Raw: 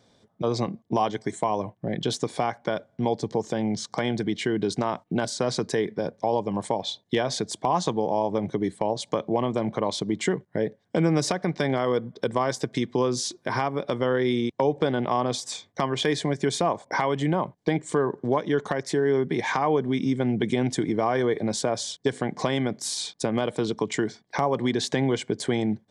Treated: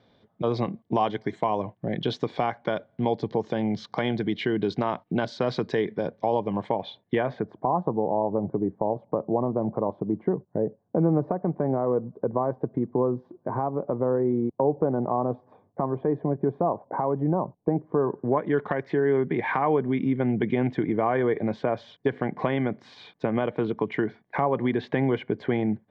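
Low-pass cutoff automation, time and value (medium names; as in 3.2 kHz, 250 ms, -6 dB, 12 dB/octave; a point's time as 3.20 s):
low-pass 24 dB/octave
6.25 s 3.8 kHz
7.27 s 2.3 kHz
7.72 s 1 kHz
17.92 s 1 kHz
18.59 s 2.5 kHz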